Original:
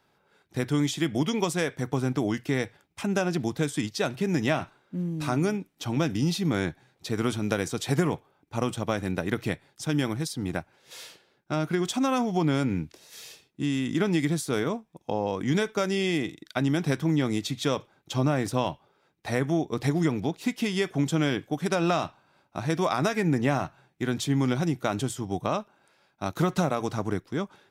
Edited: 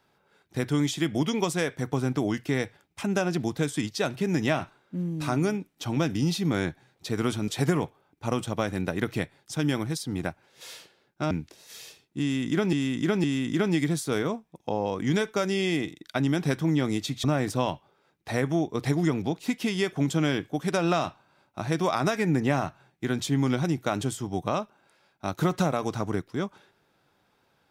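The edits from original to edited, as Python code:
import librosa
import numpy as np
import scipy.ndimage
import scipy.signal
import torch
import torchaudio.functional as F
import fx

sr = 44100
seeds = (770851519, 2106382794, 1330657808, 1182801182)

y = fx.edit(x, sr, fx.cut(start_s=7.48, length_s=0.3),
    fx.cut(start_s=11.61, length_s=1.13),
    fx.repeat(start_s=13.65, length_s=0.51, count=3),
    fx.cut(start_s=17.65, length_s=0.57), tone=tone)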